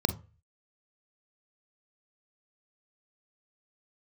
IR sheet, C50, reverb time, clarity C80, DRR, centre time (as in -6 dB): 13.5 dB, 0.35 s, 21.5 dB, 10.0 dB, 7 ms